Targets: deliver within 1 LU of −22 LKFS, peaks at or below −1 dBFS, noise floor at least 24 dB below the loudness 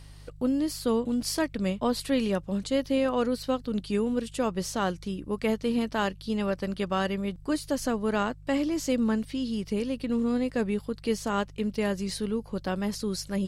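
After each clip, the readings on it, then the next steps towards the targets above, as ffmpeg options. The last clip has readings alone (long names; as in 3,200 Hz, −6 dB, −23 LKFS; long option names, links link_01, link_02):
mains hum 50 Hz; hum harmonics up to 150 Hz; level of the hum −45 dBFS; integrated loudness −29.0 LKFS; sample peak −14.5 dBFS; target loudness −22.0 LKFS
→ -af "bandreject=frequency=50:width_type=h:width=4,bandreject=frequency=100:width_type=h:width=4,bandreject=frequency=150:width_type=h:width=4"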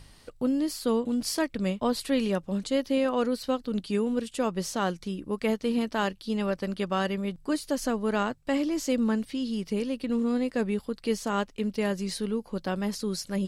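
mains hum none found; integrated loudness −29.0 LKFS; sample peak −15.0 dBFS; target loudness −22.0 LKFS
→ -af "volume=7dB"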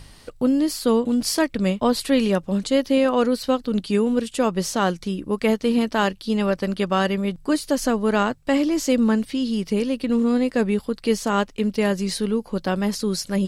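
integrated loudness −22.0 LKFS; sample peak −8.0 dBFS; background noise floor −48 dBFS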